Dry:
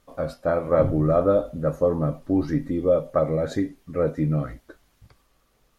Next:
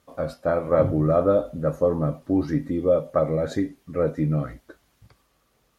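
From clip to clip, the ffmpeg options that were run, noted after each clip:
-af "highpass=56"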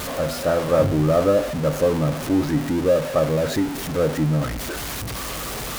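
-af "aeval=exprs='val(0)+0.5*0.0668*sgn(val(0))':c=same"

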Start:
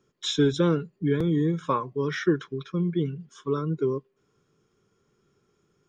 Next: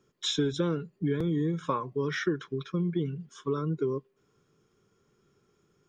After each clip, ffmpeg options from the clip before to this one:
-af "acompressor=threshold=0.0501:ratio=3"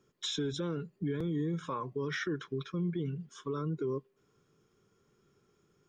-af "alimiter=level_in=1.12:limit=0.0631:level=0:latency=1:release=51,volume=0.891,volume=0.841"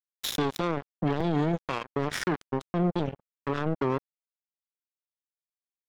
-af "acrusher=bits=4:mix=0:aa=0.5,volume=2.11"

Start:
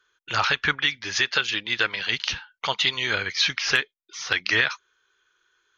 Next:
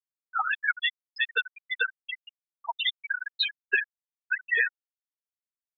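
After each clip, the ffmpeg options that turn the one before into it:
-af "aecho=1:1:75|150|225:0.422|0.118|0.0331,afftfilt=real='re*gte(hypot(re,im),0.355)':imag='im*gte(hypot(re,im),0.355)':win_size=1024:overlap=0.75"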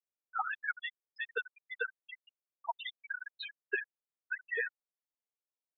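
-af "bandpass=f=490:t=q:w=1.1:csg=0,volume=1.12"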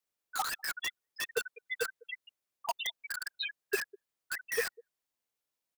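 -filter_complex "[0:a]acrossover=split=530|890|2200[s0][s1][s2][s3];[s0]aecho=1:1:200:0.133[s4];[s2]aeval=exprs='(mod(100*val(0)+1,2)-1)/100':c=same[s5];[s4][s1][s5][s3]amix=inputs=4:normalize=0,volume=2.24"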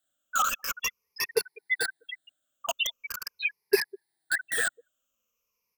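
-af "afftfilt=real='re*pow(10,20/40*sin(2*PI*(0.83*log(max(b,1)*sr/1024/100)/log(2)-(-0.43)*(pts-256)/sr)))':imag='im*pow(10,20/40*sin(2*PI*(0.83*log(max(b,1)*sr/1024/100)/log(2)-(-0.43)*(pts-256)/sr)))':win_size=1024:overlap=0.75,volume=1.41"

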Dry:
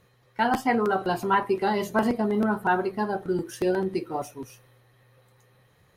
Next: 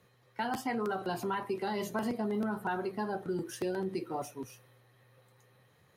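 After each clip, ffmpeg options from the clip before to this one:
-filter_complex "[0:a]acrossover=split=150|3000[s0][s1][s2];[s1]acompressor=threshold=0.0562:ratio=6[s3];[s0][s3][s2]amix=inputs=3:normalize=0,highpass=90,asplit=2[s4][s5];[s5]alimiter=level_in=1.33:limit=0.0631:level=0:latency=1:release=30,volume=0.75,volume=0.794[s6];[s4][s6]amix=inputs=2:normalize=0,volume=0.376"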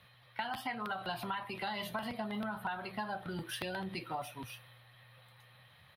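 -af "firequalizer=gain_entry='entry(120,0);entry(410,-13);entry(600,2);entry(3500,12);entry(6700,-13);entry(9700,1)':delay=0.05:min_phase=1,acompressor=threshold=0.0158:ratio=6,lowshelf=f=61:g=10,volume=1.12"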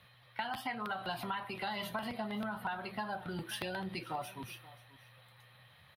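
-af "aecho=1:1:533:0.112"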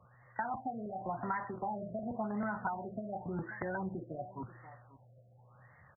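-af "afftfilt=real='re*lt(b*sr/1024,690*pow(2200/690,0.5+0.5*sin(2*PI*0.91*pts/sr)))':imag='im*lt(b*sr/1024,690*pow(2200/690,0.5+0.5*sin(2*PI*0.91*pts/sr)))':win_size=1024:overlap=0.75,volume=1.33"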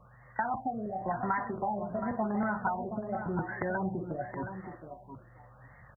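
-af "aeval=exprs='val(0)+0.000355*(sin(2*PI*50*n/s)+sin(2*PI*2*50*n/s)/2+sin(2*PI*3*50*n/s)/3+sin(2*PI*4*50*n/s)/4+sin(2*PI*5*50*n/s)/5)':c=same,aecho=1:1:721:0.335,volume=1.78"

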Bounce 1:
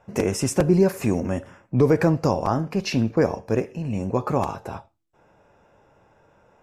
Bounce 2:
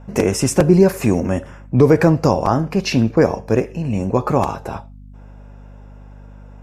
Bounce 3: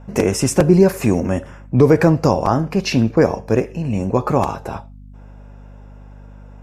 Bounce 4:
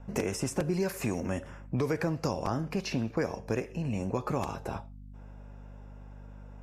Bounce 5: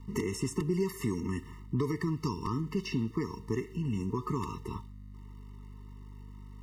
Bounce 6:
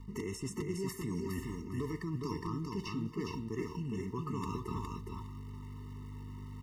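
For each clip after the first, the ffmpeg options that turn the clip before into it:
-af "aeval=exprs='val(0)+0.00631*(sin(2*PI*50*n/s)+sin(2*PI*2*50*n/s)/2+sin(2*PI*3*50*n/s)/3+sin(2*PI*4*50*n/s)/4+sin(2*PI*5*50*n/s)/5)':c=same,volume=2"
-af anull
-filter_complex "[0:a]acrossover=split=640|1400[s0][s1][s2];[s0]acompressor=threshold=0.0794:ratio=4[s3];[s1]acompressor=threshold=0.02:ratio=4[s4];[s2]acompressor=threshold=0.0316:ratio=4[s5];[s3][s4][s5]amix=inputs=3:normalize=0,volume=0.422"
-af "aeval=exprs='val(0)*gte(abs(val(0)),0.00188)':c=same,afftfilt=real='re*eq(mod(floor(b*sr/1024/440),2),0)':imag='im*eq(mod(floor(b*sr/1024/440),2),0)':win_size=1024:overlap=0.75"
-af "areverse,acompressor=threshold=0.0112:ratio=5,areverse,aecho=1:1:412|824|1236:0.668|0.107|0.0171,volume=1.41"

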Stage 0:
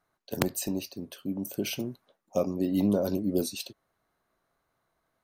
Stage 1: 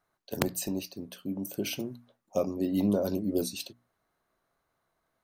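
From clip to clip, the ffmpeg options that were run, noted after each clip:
-af "bandreject=f=60:t=h:w=6,bandreject=f=120:t=h:w=6,bandreject=f=180:t=h:w=6,bandreject=f=240:t=h:w=6,bandreject=f=300:t=h:w=6,volume=0.891"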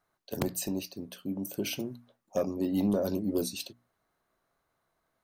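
-af "asoftclip=type=tanh:threshold=0.141"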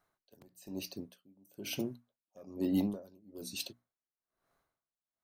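-af "aeval=exprs='val(0)*pow(10,-30*(0.5-0.5*cos(2*PI*1.1*n/s))/20)':c=same"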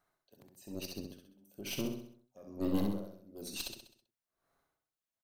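-filter_complex "[0:a]aeval=exprs='(tanh(31.6*val(0)+0.65)-tanh(0.65))/31.6':c=same,asplit=2[s0][s1];[s1]aecho=0:1:65|130|195|260|325|390:0.562|0.264|0.124|0.0584|0.0274|0.0129[s2];[s0][s2]amix=inputs=2:normalize=0,volume=1.26"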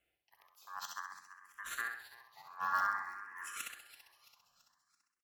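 -filter_complex "[0:a]aeval=exprs='val(0)*sin(2*PI*1400*n/s)':c=same,aecho=1:1:334|668|1002|1336:0.178|0.0854|0.041|0.0197,asplit=2[s0][s1];[s1]afreqshift=0.53[s2];[s0][s2]amix=inputs=2:normalize=1,volume=1.41"

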